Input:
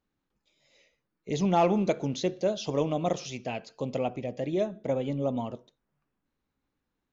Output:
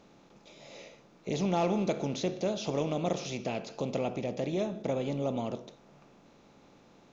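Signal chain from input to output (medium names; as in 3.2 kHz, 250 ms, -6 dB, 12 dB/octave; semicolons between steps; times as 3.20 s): spectral levelling over time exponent 0.6; dynamic bell 900 Hz, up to -3 dB, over -39 dBFS, Q 0.73; in parallel at -2 dB: compression, threshold -35 dBFS, peak gain reduction 15.5 dB; on the sum: trim -6.5 dB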